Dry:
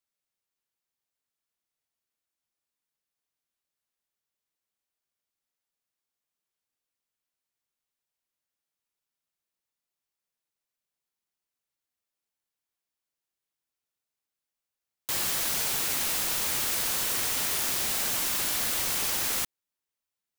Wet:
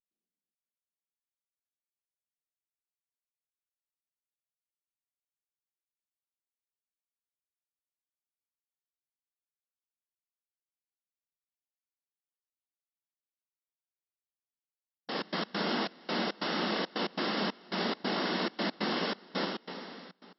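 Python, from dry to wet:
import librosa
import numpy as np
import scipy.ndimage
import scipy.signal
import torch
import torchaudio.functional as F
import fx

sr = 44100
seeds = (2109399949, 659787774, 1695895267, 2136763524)

y = fx.cvsd(x, sr, bps=64000)
y = fx.high_shelf(y, sr, hz=4100.0, db=8.0)
y = fx.notch(y, sr, hz=2400.0, q=6.1)
y = fx.rev_plate(y, sr, seeds[0], rt60_s=2.5, hf_ratio=0.95, predelay_ms=0, drr_db=-0.5)
y = fx.step_gate(y, sr, bpm=138, pattern='.xxxx.x.xxx..xx', floor_db=-24.0, edge_ms=4.5)
y = fx.brickwall_bandpass(y, sr, low_hz=170.0, high_hz=5600.0)
y = fx.tilt_eq(y, sr, slope=-4.0)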